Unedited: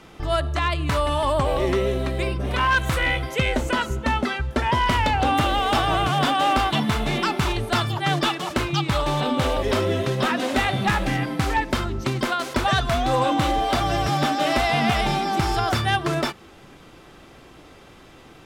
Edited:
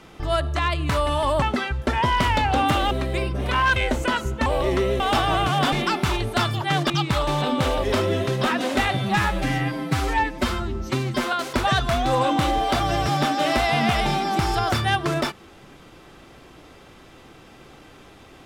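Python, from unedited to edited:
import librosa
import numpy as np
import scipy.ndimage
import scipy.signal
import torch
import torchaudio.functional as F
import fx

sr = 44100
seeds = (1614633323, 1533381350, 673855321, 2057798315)

y = fx.edit(x, sr, fx.swap(start_s=1.42, length_s=0.54, other_s=4.11, other_length_s=1.49),
    fx.cut(start_s=2.81, length_s=0.6),
    fx.cut(start_s=6.32, length_s=0.76),
    fx.cut(start_s=8.26, length_s=0.43),
    fx.stretch_span(start_s=10.76, length_s=1.57, factor=1.5), tone=tone)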